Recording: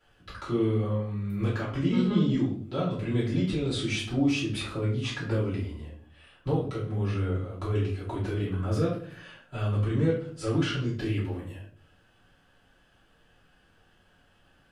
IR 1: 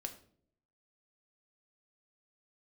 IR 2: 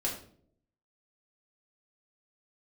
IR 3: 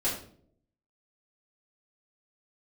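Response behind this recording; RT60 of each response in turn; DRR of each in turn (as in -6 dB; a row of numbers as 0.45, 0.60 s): 3; 0.60, 0.60, 0.60 s; 4.5, -4.5, -10.5 dB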